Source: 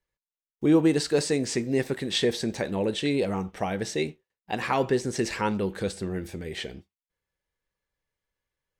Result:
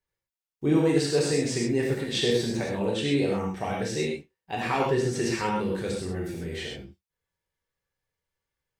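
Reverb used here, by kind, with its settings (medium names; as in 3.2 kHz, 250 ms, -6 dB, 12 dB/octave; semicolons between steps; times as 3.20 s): gated-style reverb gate 150 ms flat, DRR -3 dB; trim -4.5 dB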